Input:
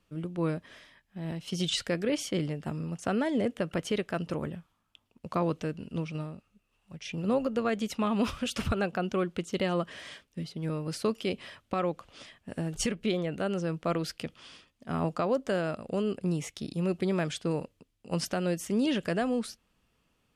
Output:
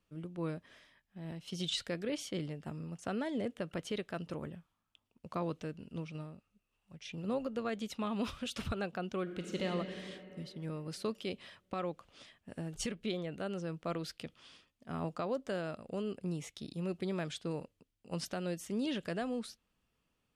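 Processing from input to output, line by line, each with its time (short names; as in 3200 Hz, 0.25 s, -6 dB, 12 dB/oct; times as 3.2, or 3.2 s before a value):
9.22–9.67 reverb throw, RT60 2.9 s, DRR 1 dB
whole clip: dynamic EQ 3800 Hz, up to +5 dB, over -56 dBFS, Q 3.8; gain -8 dB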